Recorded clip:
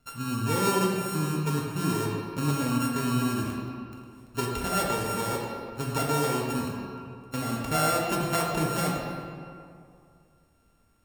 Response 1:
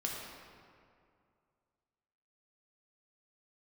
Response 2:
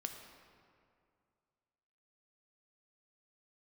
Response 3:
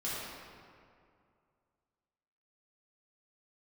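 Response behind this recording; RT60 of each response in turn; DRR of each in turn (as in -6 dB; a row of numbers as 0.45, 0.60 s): 1; 2.3, 2.3, 2.3 s; -2.5, 4.0, -9.5 dB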